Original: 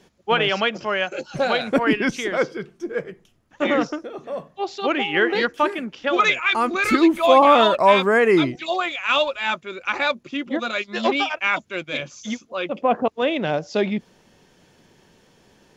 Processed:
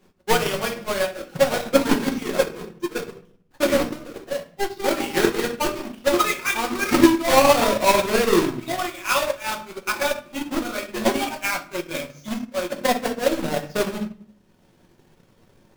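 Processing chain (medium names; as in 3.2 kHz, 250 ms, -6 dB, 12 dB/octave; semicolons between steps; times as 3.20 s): square wave that keeps the level; simulated room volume 99 m³, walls mixed, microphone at 1 m; transient shaper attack +8 dB, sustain -7 dB; trim -12 dB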